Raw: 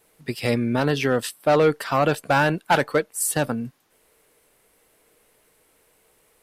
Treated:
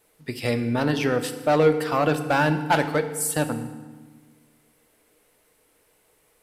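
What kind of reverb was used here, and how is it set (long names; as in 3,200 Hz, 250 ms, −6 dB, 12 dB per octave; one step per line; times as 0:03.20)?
feedback delay network reverb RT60 1.4 s, low-frequency decay 1.4×, high-frequency decay 0.75×, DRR 8 dB
level −2.5 dB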